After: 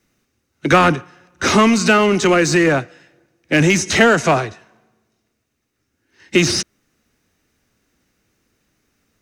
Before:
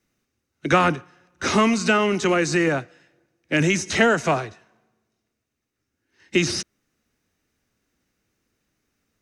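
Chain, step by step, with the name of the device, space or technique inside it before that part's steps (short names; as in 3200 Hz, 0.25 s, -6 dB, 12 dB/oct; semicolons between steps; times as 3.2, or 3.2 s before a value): parallel distortion (in parallel at -4 dB: hard clip -21.5 dBFS, distortion -7 dB); on the sum: gain +3.5 dB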